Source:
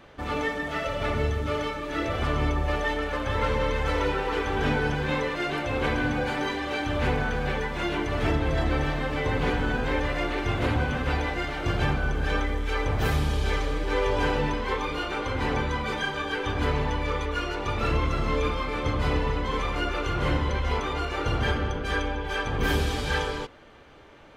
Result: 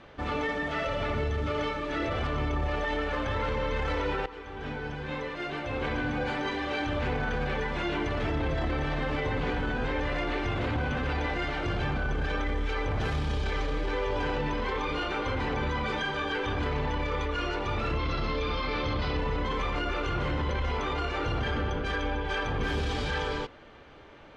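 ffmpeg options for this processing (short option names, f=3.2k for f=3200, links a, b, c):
-filter_complex "[0:a]asettb=1/sr,asplit=3[a][b][c];[a]atrim=end=17.984[d];[b]atrim=start=17.98:end=19.17,asetpts=PTS-STARTPTS,afade=t=in:d=0.004:c=qsin,afade=t=out:st=1.186:d=0.004:c=qsin,lowpass=f=4.7k:t=q:w=2.5[e];[c]atrim=start=19.166[f];[d][e]acrossfade=d=0.004:c1=hsin:c2=qsin[g];[g][f]acrossfade=d=0.004:c1=qsin:c2=hsin,asplit=2[h][i];[h]atrim=end=4.26,asetpts=PTS-STARTPTS,afade=t=out:st=4.256:d=0.004:c=hsin:silence=0.133352[j];[i]atrim=start=4.26,asetpts=PTS-STARTPTS,afade=t=in:d=2.84:silence=0.133352[k];[j][k]concat=n=2:v=0:a=1,alimiter=limit=-22dB:level=0:latency=1:release=11,lowpass=5.5k"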